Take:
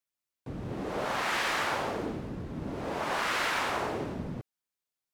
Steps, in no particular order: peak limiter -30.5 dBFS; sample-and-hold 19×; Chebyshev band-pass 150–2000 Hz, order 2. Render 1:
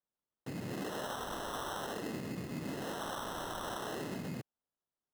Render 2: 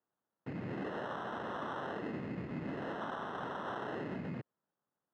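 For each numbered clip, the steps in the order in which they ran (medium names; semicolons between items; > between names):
peak limiter > Chebyshev band-pass > sample-and-hold; peak limiter > sample-and-hold > Chebyshev band-pass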